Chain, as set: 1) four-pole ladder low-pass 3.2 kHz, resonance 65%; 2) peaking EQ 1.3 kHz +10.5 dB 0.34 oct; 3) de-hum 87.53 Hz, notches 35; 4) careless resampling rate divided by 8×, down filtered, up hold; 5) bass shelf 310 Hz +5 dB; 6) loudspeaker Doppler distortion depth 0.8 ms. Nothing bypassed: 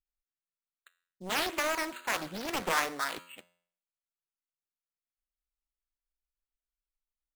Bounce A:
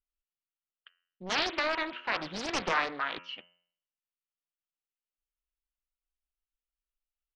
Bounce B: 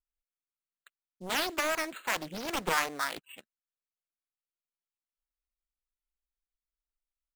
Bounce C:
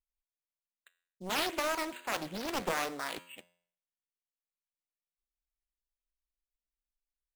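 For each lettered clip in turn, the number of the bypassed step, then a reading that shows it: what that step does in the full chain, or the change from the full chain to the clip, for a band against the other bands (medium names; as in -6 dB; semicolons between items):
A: 4, 8 kHz band -7.0 dB; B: 3, momentary loudness spread change -6 LU; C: 2, 2 kHz band -3.0 dB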